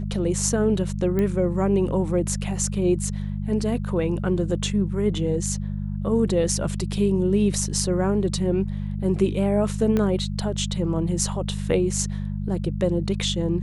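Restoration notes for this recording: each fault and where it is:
mains hum 50 Hz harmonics 4 −28 dBFS
0:01.19: click −14 dBFS
0:09.97: click −12 dBFS

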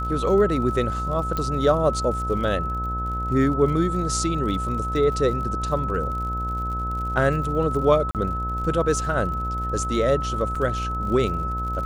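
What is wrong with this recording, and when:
mains buzz 60 Hz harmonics 21 −29 dBFS
surface crackle 63 per second −33 dBFS
whistle 1,300 Hz −27 dBFS
0:01.37: click −13 dBFS
0:08.11–0:08.15: drop-out 38 ms
0:10.55: drop-out 4.8 ms

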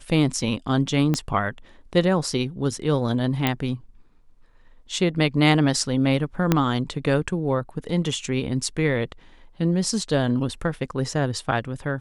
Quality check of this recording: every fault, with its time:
0:01.14: click −10 dBFS
0:03.47: click −7 dBFS
0:06.52: click −4 dBFS

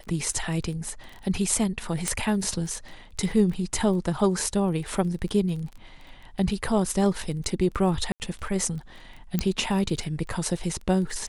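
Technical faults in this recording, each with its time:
surface crackle 19 per second −34 dBFS
0:02.08: click −11 dBFS
0:08.12–0:08.20: drop-out 79 ms
0:09.39: click −10 dBFS

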